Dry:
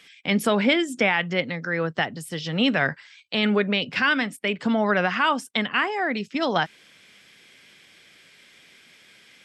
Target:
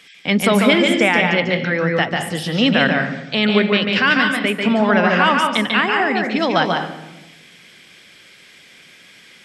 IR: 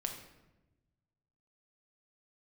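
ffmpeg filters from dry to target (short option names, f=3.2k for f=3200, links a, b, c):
-filter_complex "[0:a]asplit=2[a][b];[1:a]atrim=start_sample=2205,adelay=144[c];[b][c]afir=irnorm=-1:irlink=0,volume=-2.5dB[d];[a][d]amix=inputs=2:normalize=0,volume=5dB"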